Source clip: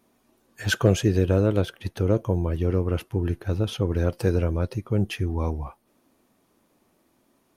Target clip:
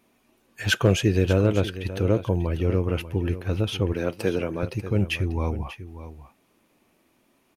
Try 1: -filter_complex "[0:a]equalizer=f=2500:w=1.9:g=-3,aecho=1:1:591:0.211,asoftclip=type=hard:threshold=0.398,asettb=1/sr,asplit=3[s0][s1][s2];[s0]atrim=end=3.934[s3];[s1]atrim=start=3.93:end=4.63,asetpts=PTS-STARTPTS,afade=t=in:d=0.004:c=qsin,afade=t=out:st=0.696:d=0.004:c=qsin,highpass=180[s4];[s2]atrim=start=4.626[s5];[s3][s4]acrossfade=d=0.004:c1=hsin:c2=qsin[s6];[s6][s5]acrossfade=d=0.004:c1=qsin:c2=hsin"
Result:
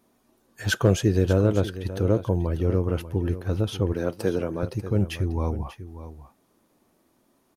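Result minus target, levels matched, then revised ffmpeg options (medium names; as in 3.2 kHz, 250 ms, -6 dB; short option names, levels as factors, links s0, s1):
2 kHz band -3.5 dB
-filter_complex "[0:a]equalizer=f=2500:w=1.9:g=7.5,aecho=1:1:591:0.211,asoftclip=type=hard:threshold=0.398,asettb=1/sr,asplit=3[s0][s1][s2];[s0]atrim=end=3.934[s3];[s1]atrim=start=3.93:end=4.63,asetpts=PTS-STARTPTS,afade=t=in:d=0.004:c=qsin,afade=t=out:st=0.696:d=0.004:c=qsin,highpass=180[s4];[s2]atrim=start=4.626[s5];[s3][s4]acrossfade=d=0.004:c1=hsin:c2=qsin[s6];[s6][s5]acrossfade=d=0.004:c1=qsin:c2=hsin"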